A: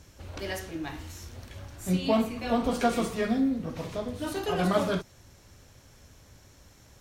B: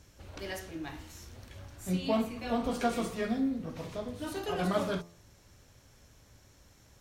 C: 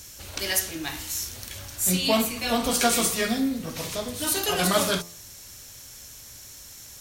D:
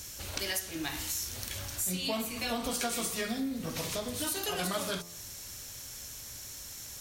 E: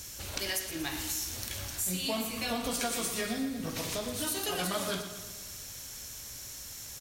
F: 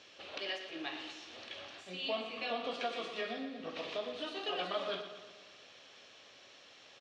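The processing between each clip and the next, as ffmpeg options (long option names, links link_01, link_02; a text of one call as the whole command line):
ffmpeg -i in.wav -af "bandreject=frequency=85.9:width_type=h:width=4,bandreject=frequency=171.8:width_type=h:width=4,bandreject=frequency=257.7:width_type=h:width=4,bandreject=frequency=343.6:width_type=h:width=4,bandreject=frequency=429.5:width_type=h:width=4,bandreject=frequency=515.4:width_type=h:width=4,bandreject=frequency=601.3:width_type=h:width=4,bandreject=frequency=687.2:width_type=h:width=4,bandreject=frequency=773.1:width_type=h:width=4,bandreject=frequency=859:width_type=h:width=4,bandreject=frequency=944.9:width_type=h:width=4,bandreject=frequency=1030.8:width_type=h:width=4,bandreject=frequency=1116.7:width_type=h:width=4,bandreject=frequency=1202.6:width_type=h:width=4,volume=-4.5dB" out.wav
ffmpeg -i in.wav -af "crystalizer=i=7.5:c=0,volume=4.5dB" out.wav
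ffmpeg -i in.wav -af "acompressor=threshold=-32dB:ratio=4" out.wav
ffmpeg -i in.wav -af "aecho=1:1:118|236|354|472|590|708|826:0.299|0.17|0.097|0.0553|0.0315|0.018|0.0102" out.wav
ffmpeg -i in.wav -af "highpass=490,equalizer=frequency=930:width_type=q:width=4:gain=-8,equalizer=frequency=1500:width_type=q:width=4:gain=-8,equalizer=frequency=2100:width_type=q:width=4:gain=-7,lowpass=frequency=3200:width=0.5412,lowpass=frequency=3200:width=1.3066,volume=1.5dB" out.wav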